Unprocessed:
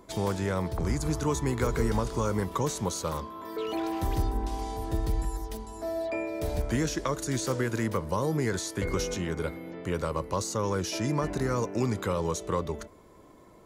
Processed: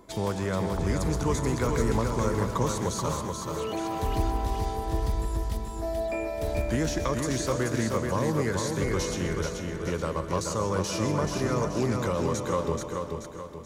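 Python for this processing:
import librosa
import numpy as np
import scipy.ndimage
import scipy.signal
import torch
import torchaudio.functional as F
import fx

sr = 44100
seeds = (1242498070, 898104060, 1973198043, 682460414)

y = fx.echo_feedback(x, sr, ms=431, feedback_pct=43, wet_db=-4.5)
y = fx.rev_plate(y, sr, seeds[0], rt60_s=0.53, hf_ratio=0.95, predelay_ms=115, drr_db=10.0)
y = fx.doppler_dist(y, sr, depth_ms=0.11)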